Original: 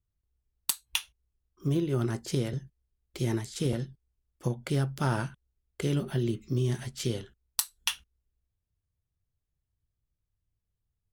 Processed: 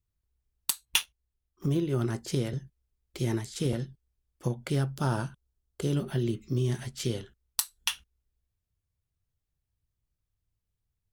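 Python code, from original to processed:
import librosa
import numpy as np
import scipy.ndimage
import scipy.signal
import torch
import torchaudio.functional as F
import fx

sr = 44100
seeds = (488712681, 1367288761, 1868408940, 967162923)

y = fx.leveller(x, sr, passes=2, at=(0.85, 1.66))
y = fx.peak_eq(y, sr, hz=2100.0, db=-9.0, octaves=0.63, at=(4.96, 5.96))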